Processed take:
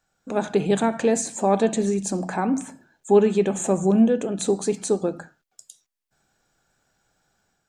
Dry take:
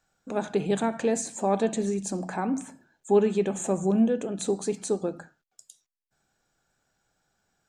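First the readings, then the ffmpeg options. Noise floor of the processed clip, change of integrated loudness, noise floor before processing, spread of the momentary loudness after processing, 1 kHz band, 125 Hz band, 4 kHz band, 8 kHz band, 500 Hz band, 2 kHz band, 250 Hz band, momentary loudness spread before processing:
−77 dBFS, +5.0 dB, −81 dBFS, 10 LU, +5.0 dB, +5.0 dB, +5.0 dB, +5.0 dB, +5.0 dB, +5.0 dB, +5.0 dB, 9 LU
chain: -af "dynaudnorm=framelen=100:gausssize=5:maxgain=5dB"

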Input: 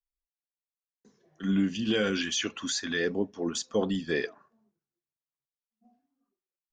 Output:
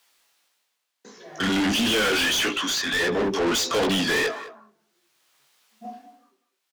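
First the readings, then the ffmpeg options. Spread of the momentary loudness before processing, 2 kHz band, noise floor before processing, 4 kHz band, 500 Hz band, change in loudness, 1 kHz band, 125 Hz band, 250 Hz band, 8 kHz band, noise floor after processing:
4 LU, +10.5 dB, below −85 dBFS, +10.5 dB, +5.5 dB, +7.5 dB, +14.0 dB, +1.5 dB, +3.5 dB, +7.0 dB, −78 dBFS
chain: -filter_complex "[0:a]highpass=82,equalizer=frequency=3500:width=1.5:gain=2,bandreject=frequency=50:width_type=h:width=6,bandreject=frequency=100:width_type=h:width=6,bandreject=frequency=150:width_type=h:width=6,bandreject=frequency=200:width_type=h:width=6,bandreject=frequency=250:width_type=h:width=6,bandreject=frequency=300:width_type=h:width=6,bandreject=frequency=350:width_type=h:width=6,bandreject=frequency=400:width_type=h:width=6,asplit=2[link_01][link_02];[link_02]acompressor=threshold=-42dB:ratio=6,volume=2dB[link_03];[link_01][link_03]amix=inputs=2:normalize=0,tremolo=f=0.54:d=0.84,flanger=delay=16.5:depth=7.3:speed=1.6,asplit=2[link_04][link_05];[link_05]highpass=frequency=720:poles=1,volume=38dB,asoftclip=type=tanh:threshold=-15.5dB[link_06];[link_04][link_06]amix=inputs=2:normalize=0,lowpass=frequency=5900:poles=1,volume=-6dB,asplit=2[link_07][link_08];[link_08]adelay=200,highpass=300,lowpass=3400,asoftclip=type=hard:threshold=-23.5dB,volume=-13dB[link_09];[link_07][link_09]amix=inputs=2:normalize=0"

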